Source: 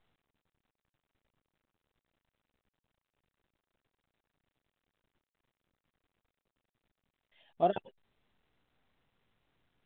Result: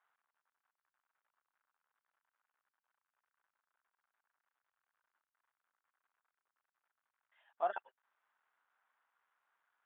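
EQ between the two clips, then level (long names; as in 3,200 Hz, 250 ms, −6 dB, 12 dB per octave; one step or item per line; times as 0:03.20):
four-pole ladder band-pass 1,200 Hz, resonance 40%
parametric band 1,500 Hz +8.5 dB 0.62 octaves
+7.0 dB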